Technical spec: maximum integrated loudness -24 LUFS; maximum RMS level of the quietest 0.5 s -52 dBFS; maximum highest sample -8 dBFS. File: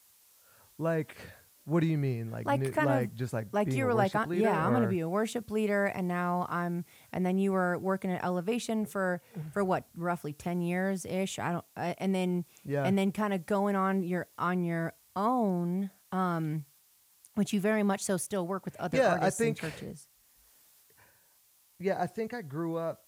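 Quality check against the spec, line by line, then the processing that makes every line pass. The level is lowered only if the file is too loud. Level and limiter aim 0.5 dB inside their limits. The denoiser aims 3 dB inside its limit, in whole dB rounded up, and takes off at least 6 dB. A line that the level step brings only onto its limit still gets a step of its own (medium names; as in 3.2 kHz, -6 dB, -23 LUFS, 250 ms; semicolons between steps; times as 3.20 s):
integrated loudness -31.0 LUFS: pass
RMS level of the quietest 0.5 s -65 dBFS: pass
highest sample -14.5 dBFS: pass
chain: none needed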